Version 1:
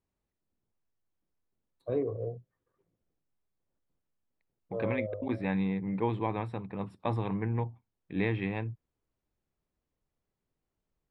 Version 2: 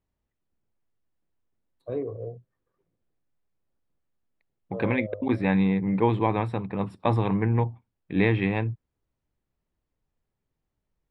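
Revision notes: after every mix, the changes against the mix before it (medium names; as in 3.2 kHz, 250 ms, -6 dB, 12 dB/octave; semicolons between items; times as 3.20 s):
second voice +8.0 dB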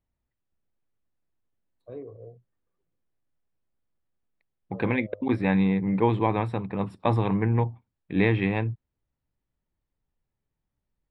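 first voice -9.0 dB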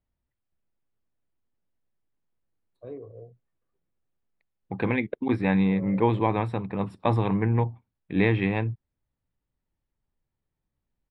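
first voice: entry +0.95 s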